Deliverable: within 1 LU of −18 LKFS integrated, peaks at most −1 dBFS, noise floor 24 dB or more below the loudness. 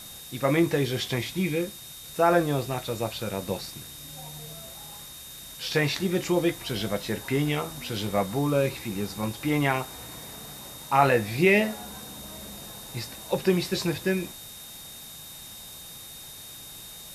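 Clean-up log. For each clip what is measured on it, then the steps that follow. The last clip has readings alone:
interfering tone 3,700 Hz; level of the tone −46 dBFS; background noise floor −43 dBFS; target noise floor −51 dBFS; integrated loudness −26.5 LKFS; sample peak −6.0 dBFS; target loudness −18.0 LKFS
→ notch filter 3,700 Hz, Q 30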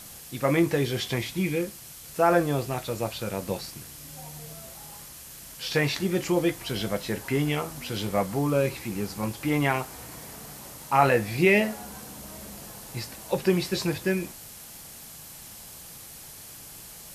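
interfering tone none found; background noise floor −45 dBFS; target noise floor −51 dBFS
→ broadband denoise 6 dB, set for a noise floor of −45 dBFS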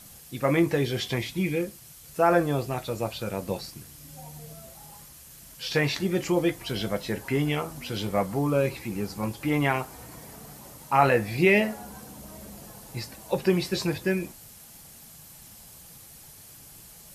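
background noise floor −49 dBFS; target noise floor −51 dBFS
→ broadband denoise 6 dB, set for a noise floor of −49 dBFS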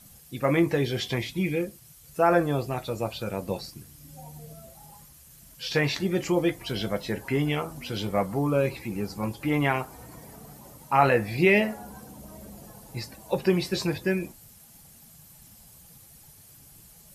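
background noise floor −52 dBFS; integrated loudness −26.5 LKFS; sample peak −6.0 dBFS; target loudness −18.0 LKFS
→ level +8.5 dB
brickwall limiter −1 dBFS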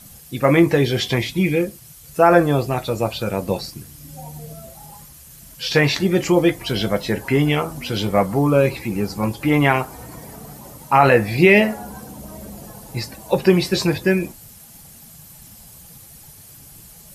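integrated loudness −18.5 LKFS; sample peak −1.0 dBFS; background noise floor −44 dBFS

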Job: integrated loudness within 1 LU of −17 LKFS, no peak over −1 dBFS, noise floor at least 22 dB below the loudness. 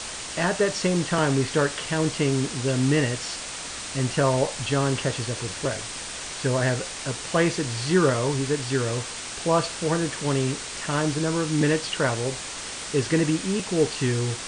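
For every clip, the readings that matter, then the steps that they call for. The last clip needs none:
background noise floor −35 dBFS; target noise floor −47 dBFS; integrated loudness −25.0 LKFS; sample peak −8.0 dBFS; target loudness −17.0 LKFS
→ broadband denoise 12 dB, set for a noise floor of −35 dBFS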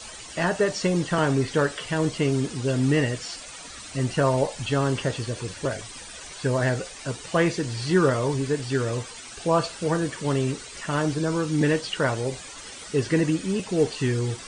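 background noise floor −41 dBFS; target noise floor −48 dBFS
→ broadband denoise 7 dB, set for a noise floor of −41 dBFS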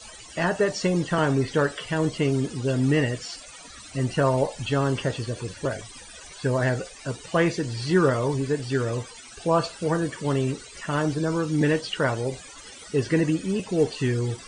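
background noise floor −44 dBFS; target noise floor −48 dBFS
→ broadband denoise 6 dB, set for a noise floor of −44 dBFS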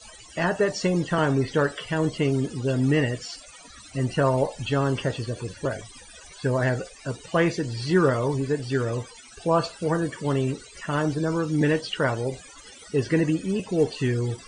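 background noise floor −47 dBFS; target noise floor −48 dBFS; integrated loudness −25.5 LKFS; sample peak −8.5 dBFS; target loudness −17.0 LKFS
→ level +8.5 dB
brickwall limiter −1 dBFS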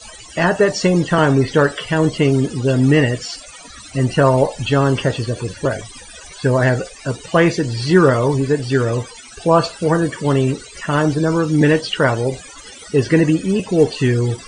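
integrated loudness −17.0 LKFS; sample peak −1.0 dBFS; background noise floor −39 dBFS

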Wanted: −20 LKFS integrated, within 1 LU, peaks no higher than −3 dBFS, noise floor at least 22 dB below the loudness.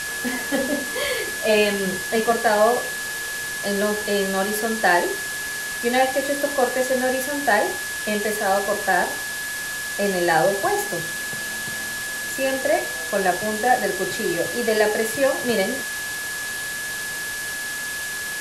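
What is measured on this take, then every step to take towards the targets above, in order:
interfering tone 1,700 Hz; level of the tone −28 dBFS; background noise floor −29 dBFS; target noise floor −45 dBFS; integrated loudness −22.5 LKFS; sample peak −3.5 dBFS; target loudness −20.0 LKFS
→ notch filter 1,700 Hz, Q 30
broadband denoise 16 dB, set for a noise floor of −29 dBFS
level +2.5 dB
brickwall limiter −3 dBFS

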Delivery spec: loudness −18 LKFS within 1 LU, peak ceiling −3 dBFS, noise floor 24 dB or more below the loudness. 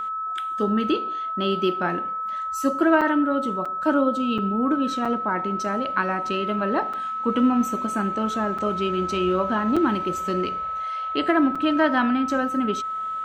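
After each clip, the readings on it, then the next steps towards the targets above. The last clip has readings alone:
number of dropouts 8; longest dropout 5.6 ms; interfering tone 1,300 Hz; level of the tone −26 dBFS; integrated loudness −23.5 LKFS; sample peak −7.5 dBFS; target loudness −18.0 LKFS
→ repair the gap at 0:03.01/0:03.65/0:04.38/0:05.05/0:06.93/0:08.58/0:09.76/0:11.55, 5.6 ms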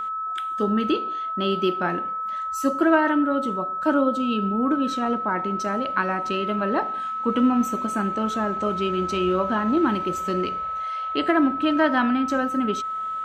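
number of dropouts 0; interfering tone 1,300 Hz; level of the tone −26 dBFS
→ notch filter 1,300 Hz, Q 30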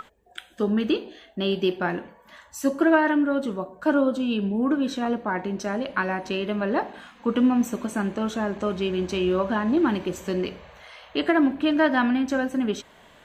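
interfering tone none found; integrated loudness −24.5 LKFS; sample peak −8.0 dBFS; target loudness −18.0 LKFS
→ level +6.5 dB
brickwall limiter −3 dBFS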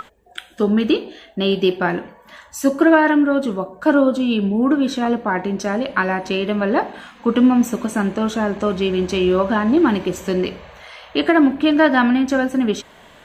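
integrated loudness −18.0 LKFS; sample peak −3.0 dBFS; background noise floor −47 dBFS

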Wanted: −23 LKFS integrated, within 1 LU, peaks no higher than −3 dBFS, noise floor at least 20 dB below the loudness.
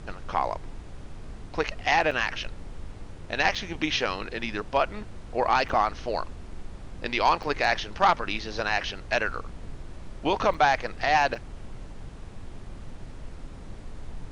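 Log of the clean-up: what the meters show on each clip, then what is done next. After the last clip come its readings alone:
number of dropouts 6; longest dropout 5.2 ms; background noise floor −42 dBFS; target noise floor −47 dBFS; integrated loudness −26.5 LKFS; sample peak −11.5 dBFS; target loudness −23.0 LKFS
→ repair the gap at 0:02.11/0:03.55/0:05.69/0:07.43/0:10.54/0:11.35, 5.2 ms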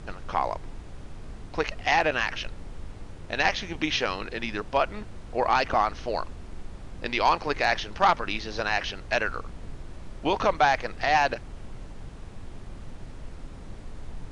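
number of dropouts 0; background noise floor −42 dBFS; target noise floor −47 dBFS
→ noise reduction from a noise print 6 dB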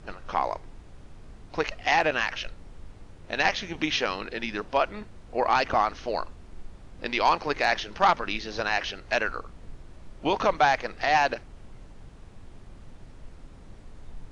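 background noise floor −48 dBFS; integrated loudness −26.5 LKFS; sample peak −11.5 dBFS; target loudness −23.0 LKFS
→ level +3.5 dB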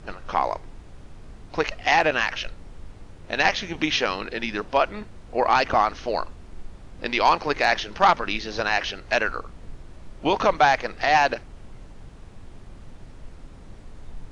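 integrated loudness −23.0 LKFS; sample peak −8.0 dBFS; background noise floor −45 dBFS

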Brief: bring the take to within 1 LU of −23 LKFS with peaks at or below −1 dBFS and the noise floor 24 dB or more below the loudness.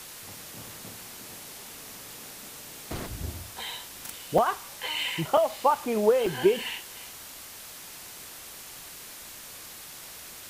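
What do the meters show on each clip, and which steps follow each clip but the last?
number of dropouts 3; longest dropout 3.8 ms; background noise floor −44 dBFS; target noise floor −55 dBFS; integrated loudness −31.0 LKFS; sample peak −10.5 dBFS; target loudness −23.0 LKFS
→ repair the gap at 0:04.38/0:05.37/0:06.26, 3.8 ms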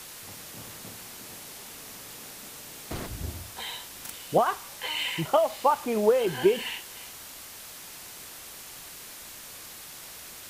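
number of dropouts 0; background noise floor −44 dBFS; target noise floor −55 dBFS
→ broadband denoise 11 dB, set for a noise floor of −44 dBFS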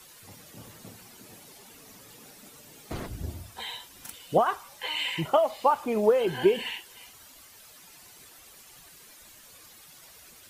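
background noise floor −52 dBFS; integrated loudness −27.5 LKFS; sample peak −10.5 dBFS; target loudness −23.0 LKFS
→ level +4.5 dB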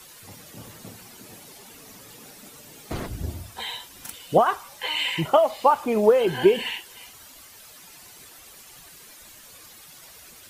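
integrated loudness −23.0 LKFS; sample peak −6.0 dBFS; background noise floor −48 dBFS

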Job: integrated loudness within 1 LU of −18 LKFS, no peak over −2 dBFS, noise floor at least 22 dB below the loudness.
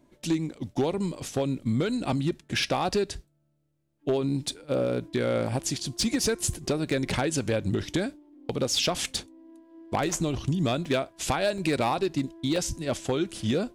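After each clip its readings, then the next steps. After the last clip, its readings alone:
share of clipped samples 0.6%; peaks flattened at −18.5 dBFS; number of dropouts 4; longest dropout 3.0 ms; integrated loudness −28.0 LKFS; sample peak −18.5 dBFS; target loudness −18.0 LKFS
→ clipped peaks rebuilt −18.5 dBFS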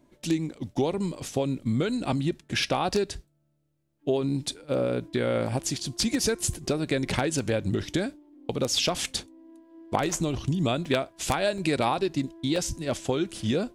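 share of clipped samples 0.0%; number of dropouts 4; longest dropout 3.0 ms
→ repair the gap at 0:06.54/0:10.85/0:11.58/0:12.56, 3 ms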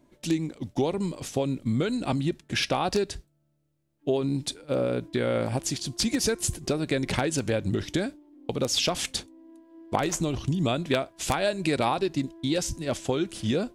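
number of dropouts 0; integrated loudness −28.0 LKFS; sample peak −9.5 dBFS; target loudness −18.0 LKFS
→ level +10 dB
brickwall limiter −2 dBFS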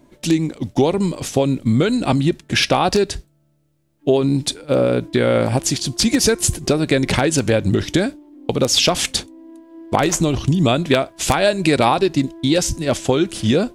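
integrated loudness −18.0 LKFS; sample peak −2.0 dBFS; background noise floor −60 dBFS

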